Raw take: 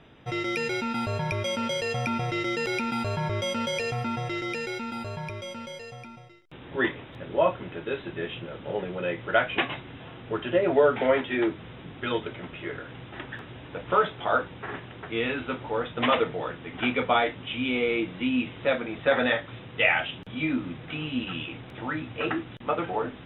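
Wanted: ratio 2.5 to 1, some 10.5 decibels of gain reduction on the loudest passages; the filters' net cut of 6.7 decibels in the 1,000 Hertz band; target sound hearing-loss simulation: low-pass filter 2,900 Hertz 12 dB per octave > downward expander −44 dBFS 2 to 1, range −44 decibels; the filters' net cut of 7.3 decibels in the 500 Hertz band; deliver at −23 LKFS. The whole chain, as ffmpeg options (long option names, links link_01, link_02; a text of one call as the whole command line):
ffmpeg -i in.wav -af "equalizer=frequency=500:width_type=o:gain=-7,equalizer=frequency=1000:width_type=o:gain=-7.5,acompressor=threshold=-35dB:ratio=2.5,lowpass=2900,agate=range=-44dB:threshold=-44dB:ratio=2,volume=15.5dB" out.wav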